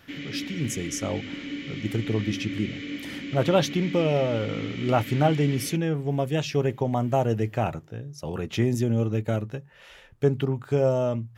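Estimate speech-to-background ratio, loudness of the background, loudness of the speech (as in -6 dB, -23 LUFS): 9.0 dB, -35.5 LUFS, -26.5 LUFS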